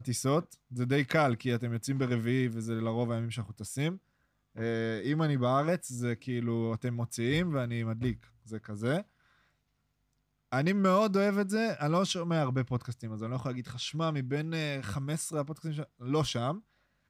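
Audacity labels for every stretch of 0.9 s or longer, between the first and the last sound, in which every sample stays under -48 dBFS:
9.030000	10.520000	silence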